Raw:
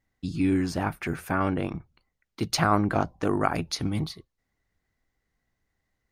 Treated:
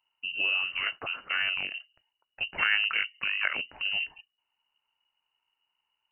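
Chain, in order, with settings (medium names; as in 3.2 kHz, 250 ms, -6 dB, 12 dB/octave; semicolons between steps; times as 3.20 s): fifteen-band graphic EQ 100 Hz +4 dB, 400 Hz -4 dB, 1.6 kHz +3 dB; frequency inversion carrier 2.9 kHz; trim -4.5 dB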